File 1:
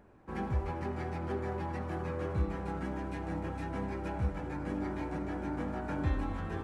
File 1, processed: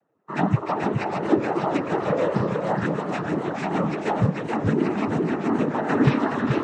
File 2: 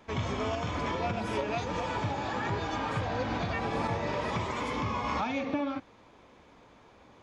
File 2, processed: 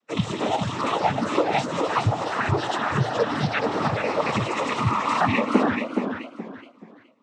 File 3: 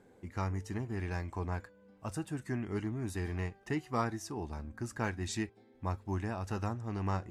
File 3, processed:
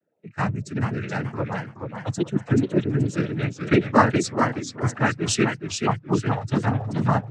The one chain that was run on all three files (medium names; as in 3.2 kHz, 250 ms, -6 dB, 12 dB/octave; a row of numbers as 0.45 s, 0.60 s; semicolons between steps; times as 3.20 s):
expander on every frequency bin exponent 2; noise-vocoded speech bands 12; modulated delay 426 ms, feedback 30%, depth 158 cents, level -5.5 dB; normalise loudness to -24 LUFS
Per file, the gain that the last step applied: +19.0 dB, +14.0 dB, +19.0 dB